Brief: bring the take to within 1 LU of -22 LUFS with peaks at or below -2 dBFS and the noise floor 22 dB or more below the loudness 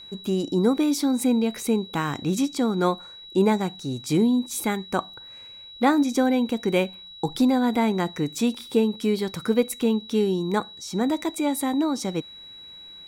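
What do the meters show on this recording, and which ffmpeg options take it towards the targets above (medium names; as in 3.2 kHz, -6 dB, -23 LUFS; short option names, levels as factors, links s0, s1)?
steady tone 3.9 kHz; tone level -41 dBFS; loudness -24.0 LUFS; peak level -7.0 dBFS; loudness target -22.0 LUFS
-> -af "bandreject=f=3900:w=30"
-af "volume=1.26"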